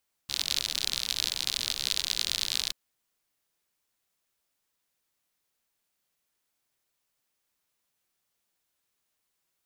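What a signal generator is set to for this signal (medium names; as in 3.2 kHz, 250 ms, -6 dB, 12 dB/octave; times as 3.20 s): rain from filtered ticks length 2.43 s, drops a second 65, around 4 kHz, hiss -17 dB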